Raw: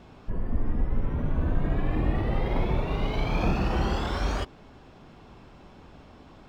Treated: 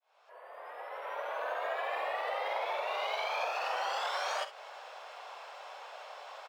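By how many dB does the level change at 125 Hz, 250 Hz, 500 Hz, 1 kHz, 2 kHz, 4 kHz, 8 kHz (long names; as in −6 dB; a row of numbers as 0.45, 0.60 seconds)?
below −40 dB, below −35 dB, −3.0 dB, +1.0 dB, +1.0 dB, +0.5 dB, can't be measured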